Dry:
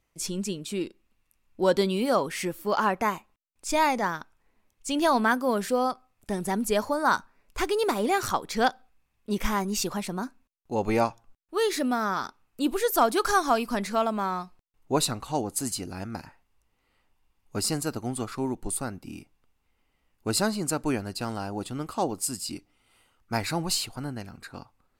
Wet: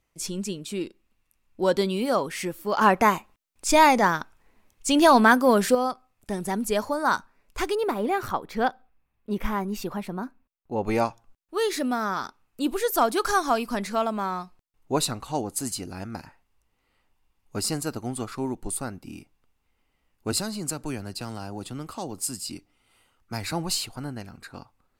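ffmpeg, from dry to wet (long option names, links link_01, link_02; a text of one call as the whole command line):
ffmpeg -i in.wav -filter_complex "[0:a]asettb=1/sr,asplit=3[link_01][link_02][link_03];[link_01]atrim=end=2.814[link_04];[link_02]atrim=start=2.81:end=5.75,asetpts=PTS-STARTPTS,afade=type=in:duration=0.004:curve=qsin,afade=type=out:start_time=2.936:duration=0.004:curve=qsin,acontrast=81[link_05];[link_03]atrim=start=5.746[link_06];[link_04][link_05]acrossfade=duration=0.004:curve1=hsin:curve2=qsin[link_07];[link_07][link_06]acrossfade=duration=0.004:curve1=qsin:curve2=hsin,asettb=1/sr,asplit=3[link_08][link_09][link_10];[link_08]atrim=end=7.754[link_11];[link_09]atrim=start=7.75:end=10.87,asetpts=PTS-STARTPTS,afade=type=in:duration=0.004:curve=qsin,afade=type=out:start_time=3.116:duration=0.004:curve=qsin,equalizer=frequency=6900:width=0.59:gain=-13.5[link_12];[link_10]atrim=start=10.866[link_13];[link_11][link_12]acrossfade=duration=0.004:curve1=hsin:curve2=qsin[link_14];[link_14][link_13]acrossfade=duration=0.004:curve1=qsin:curve2=hsin,asettb=1/sr,asplit=3[link_15][link_16][link_17];[link_15]atrim=end=20.324[link_18];[link_16]atrim=start=20.32:end=23.52,asetpts=PTS-STARTPTS,afade=type=in:duration=0.004:curve=qsin,afade=type=out:start_time=3.196:duration=0.004:curve=qsin,acrossover=split=170|3000[link_19][link_20][link_21];[link_20]acompressor=threshold=-35dB:ratio=2:attack=3.2:release=140:knee=2.83:detection=peak[link_22];[link_19][link_22][link_21]amix=inputs=3:normalize=0[link_23];[link_17]atrim=start=23.516[link_24];[link_18][link_23]acrossfade=duration=0.004:curve1=hsin:curve2=qsin[link_25];[link_25][link_24]acrossfade=duration=0.004:curve1=qsin:curve2=hsin" out.wav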